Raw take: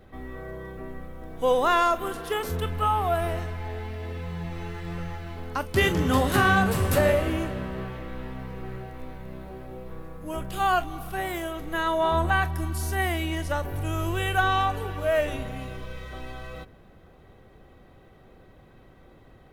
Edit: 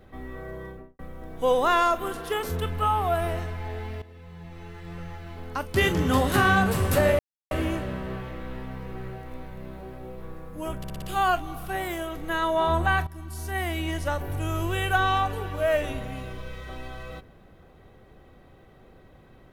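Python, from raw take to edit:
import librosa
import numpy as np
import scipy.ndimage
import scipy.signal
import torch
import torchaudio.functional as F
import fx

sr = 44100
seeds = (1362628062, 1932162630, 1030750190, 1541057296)

y = fx.studio_fade_out(x, sr, start_s=0.64, length_s=0.35)
y = fx.edit(y, sr, fx.fade_in_from(start_s=4.02, length_s=1.91, floor_db=-15.0),
    fx.insert_silence(at_s=7.19, length_s=0.32),
    fx.stutter(start_s=10.46, slice_s=0.06, count=5),
    fx.fade_in_from(start_s=12.51, length_s=0.82, floor_db=-15.0), tone=tone)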